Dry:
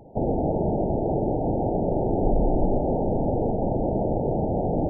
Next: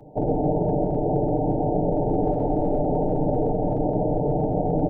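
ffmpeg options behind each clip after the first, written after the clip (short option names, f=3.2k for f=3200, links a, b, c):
-filter_complex "[0:a]acrossover=split=180|430[a][b][c];[a]aeval=exprs='0.0631*(abs(mod(val(0)/0.0631+3,4)-2)-1)':c=same[d];[d][b][c]amix=inputs=3:normalize=0,aecho=1:1:6.7:0.69"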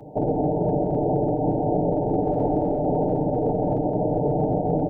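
-af "alimiter=limit=-18dB:level=0:latency=1:release=188,highpass=f=69:p=1,volume=5dB"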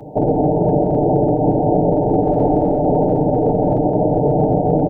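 -af "aecho=1:1:270|540|810|1080|1350:0.141|0.0777|0.0427|0.0235|0.0129,volume=7dB"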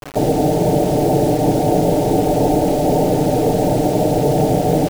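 -af "acrusher=bits=4:mix=0:aa=0.000001"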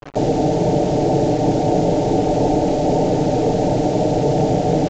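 -af "anlmdn=15.8,aresample=16000,aresample=44100,volume=-1.5dB"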